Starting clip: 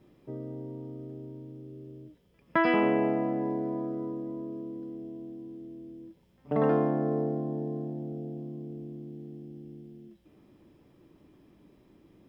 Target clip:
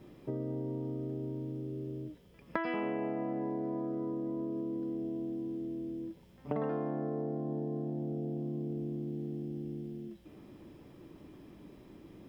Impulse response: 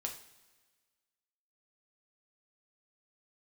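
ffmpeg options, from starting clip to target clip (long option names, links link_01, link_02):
-af "acompressor=threshold=-39dB:ratio=6,volume=6dB"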